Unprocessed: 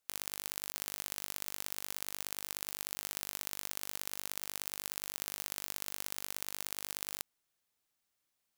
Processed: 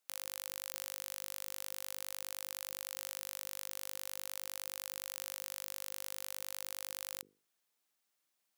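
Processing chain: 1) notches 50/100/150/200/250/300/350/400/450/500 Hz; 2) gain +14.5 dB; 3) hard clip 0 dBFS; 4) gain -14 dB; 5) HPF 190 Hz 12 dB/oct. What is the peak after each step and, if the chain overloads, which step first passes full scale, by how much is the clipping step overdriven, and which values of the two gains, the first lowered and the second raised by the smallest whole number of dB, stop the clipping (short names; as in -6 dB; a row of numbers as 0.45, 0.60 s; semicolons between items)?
-9.5, +5.0, 0.0, -14.0, -14.0 dBFS; step 2, 5.0 dB; step 2 +9.5 dB, step 4 -9 dB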